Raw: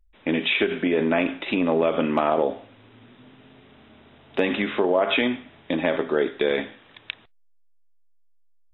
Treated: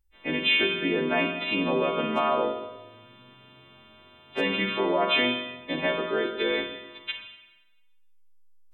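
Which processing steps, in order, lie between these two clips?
every partial snapped to a pitch grid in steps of 2 semitones
spring reverb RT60 1.1 s, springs 31/40/46 ms, chirp 30 ms, DRR 4.5 dB
level −4.5 dB

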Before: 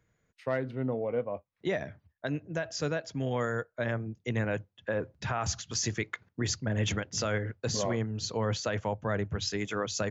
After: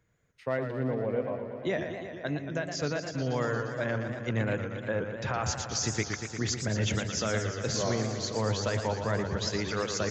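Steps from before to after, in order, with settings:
feedback echo with a swinging delay time 117 ms, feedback 78%, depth 146 cents, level −8 dB

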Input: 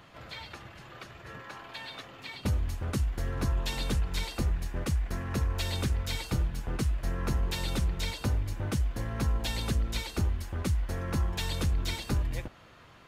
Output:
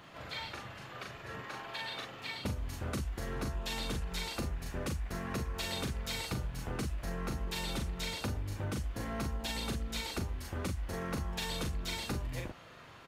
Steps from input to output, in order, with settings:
low-shelf EQ 85 Hz −7.5 dB
double-tracking delay 40 ms −3 dB
downward compressor, threshold −33 dBFS, peak gain reduction 9 dB

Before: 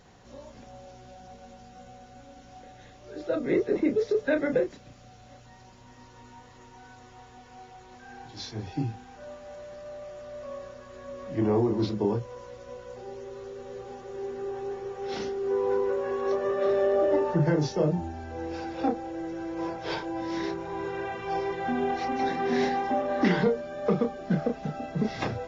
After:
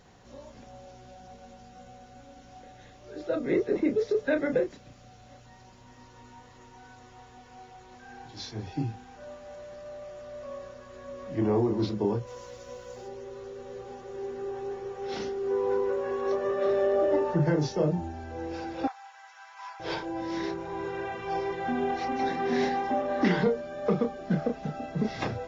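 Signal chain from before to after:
0:12.26–0:13.07: high-shelf EQ 3,400 Hz → 5,300 Hz +12 dB
0:18.87–0:19.80: Butterworth high-pass 850 Hz 48 dB per octave
level −1 dB

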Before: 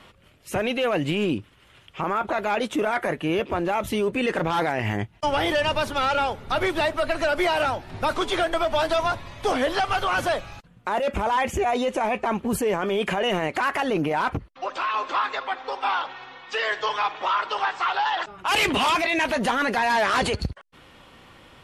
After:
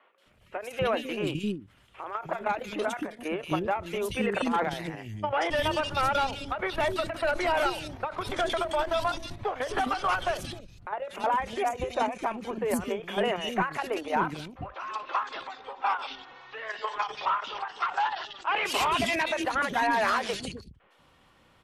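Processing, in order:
output level in coarse steps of 12 dB
three-band delay without the direct sound mids, highs, lows 180/260 ms, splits 360/2,700 Hz
every ending faded ahead of time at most 160 dB per second

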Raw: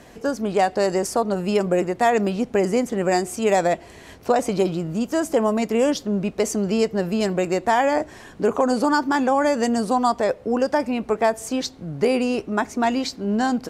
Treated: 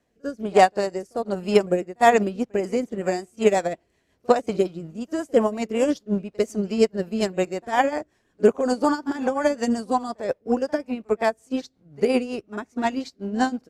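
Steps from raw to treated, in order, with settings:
echo ahead of the sound 50 ms −13.5 dB
rotating-speaker cabinet horn 1.2 Hz, later 5.5 Hz, at 0:01.85
expander for the loud parts 2.5 to 1, over −35 dBFS
level +6 dB

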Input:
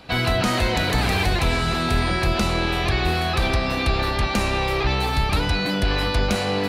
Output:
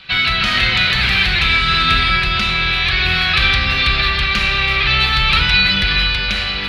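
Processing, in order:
drawn EQ curve 140 Hz 0 dB, 250 Hz −8 dB, 860 Hz −7 dB, 1,300 Hz +6 dB, 2,200 Hz +12 dB, 3,600 Hz +14 dB, 7,700 Hz −7 dB
automatic gain control
rectangular room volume 1,800 cubic metres, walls mixed, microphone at 1.1 metres
level −2 dB

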